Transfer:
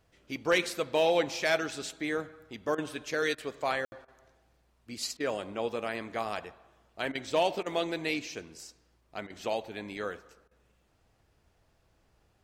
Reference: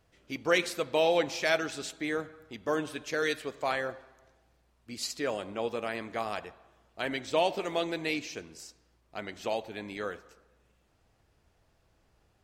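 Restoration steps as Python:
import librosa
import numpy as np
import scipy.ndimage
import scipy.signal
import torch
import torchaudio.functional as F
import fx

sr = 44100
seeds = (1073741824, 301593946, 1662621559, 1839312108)

y = fx.fix_declip(x, sr, threshold_db=-17.0)
y = fx.fix_ambience(y, sr, seeds[0], print_start_s=10.78, print_end_s=11.28, start_s=3.85, end_s=3.92)
y = fx.fix_interpolate(y, sr, at_s=(2.75, 3.35, 4.05, 5.17, 7.12, 7.63, 9.27, 10.48), length_ms=30.0)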